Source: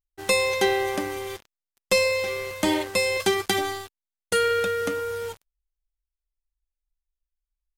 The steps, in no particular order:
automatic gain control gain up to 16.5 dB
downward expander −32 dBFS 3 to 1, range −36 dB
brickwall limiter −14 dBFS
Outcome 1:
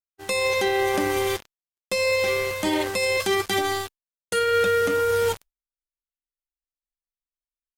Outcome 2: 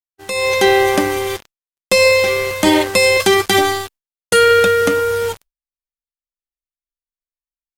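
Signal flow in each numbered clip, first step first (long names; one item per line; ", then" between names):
automatic gain control, then downward expander, then brickwall limiter
brickwall limiter, then automatic gain control, then downward expander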